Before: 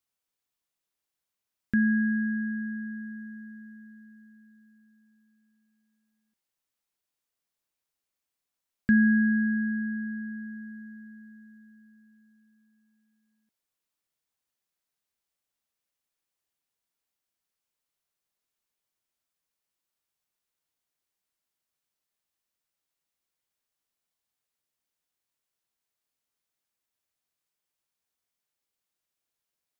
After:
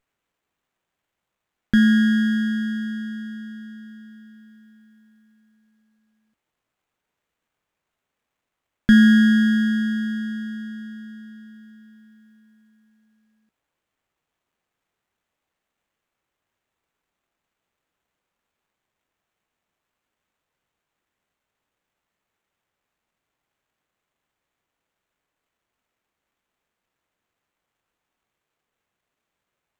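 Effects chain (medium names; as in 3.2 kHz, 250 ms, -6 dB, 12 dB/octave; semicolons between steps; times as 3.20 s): sliding maximum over 9 samples; trim +8.5 dB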